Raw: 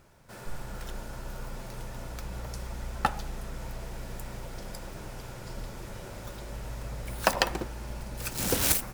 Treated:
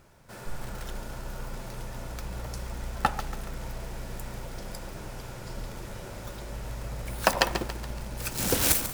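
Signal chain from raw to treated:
feedback echo at a low word length 141 ms, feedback 55%, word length 6 bits, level −10.5 dB
level +1.5 dB

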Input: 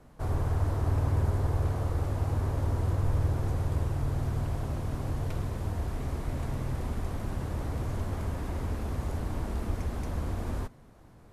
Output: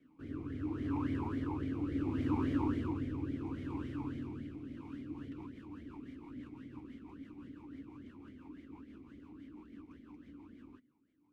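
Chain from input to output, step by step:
source passing by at 0:02.27, 7 m/s, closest 6.5 metres
rotating-speaker cabinet horn 0.7 Hz, later 6 Hz, at 0:04.57
formant filter swept between two vowels i-u 3.6 Hz
level +15 dB

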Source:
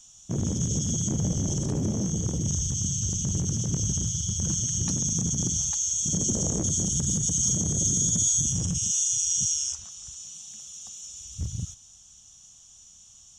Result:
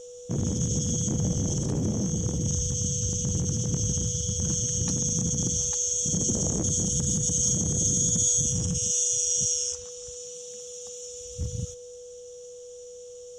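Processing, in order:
steady tone 490 Hz −41 dBFS

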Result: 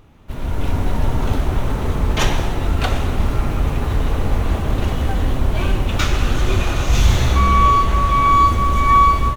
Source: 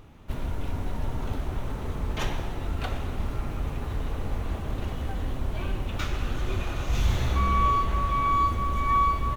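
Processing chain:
dynamic equaliser 6,700 Hz, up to +4 dB, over −51 dBFS, Q 0.77
automatic gain control gain up to 11 dB
level +1 dB

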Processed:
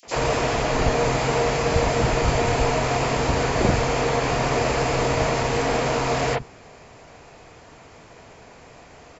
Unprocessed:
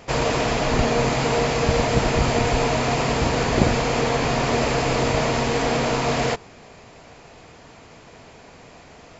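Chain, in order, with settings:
three-band delay without the direct sound highs, mids, lows 30/70 ms, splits 210/3,700 Hz

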